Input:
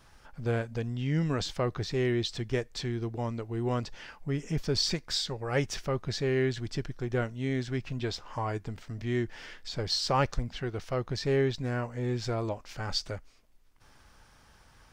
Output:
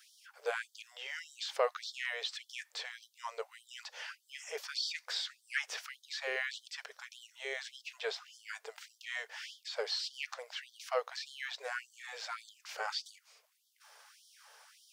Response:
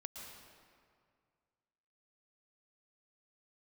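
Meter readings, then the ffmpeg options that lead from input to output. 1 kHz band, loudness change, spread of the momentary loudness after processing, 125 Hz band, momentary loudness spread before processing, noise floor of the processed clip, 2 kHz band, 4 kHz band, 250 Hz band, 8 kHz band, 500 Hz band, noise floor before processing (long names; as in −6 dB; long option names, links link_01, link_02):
−7.0 dB, −8.0 dB, 14 LU, below −40 dB, 9 LU, −74 dBFS, 0.0 dB, −4.5 dB, below −35 dB, −6.0 dB, −10.0 dB, −59 dBFS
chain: -filter_complex "[0:a]highshelf=frequency=5100:gain=5,acrossover=split=3200[link_01][link_02];[link_02]acompressor=threshold=-46dB:ratio=4:attack=1:release=60[link_03];[link_01][link_03]amix=inputs=2:normalize=0,afftfilt=real='re*gte(b*sr/1024,390*pow(3100/390,0.5+0.5*sin(2*PI*1.7*pts/sr)))':imag='im*gte(b*sr/1024,390*pow(3100/390,0.5+0.5*sin(2*PI*1.7*pts/sr)))':win_size=1024:overlap=0.75,volume=1.5dB"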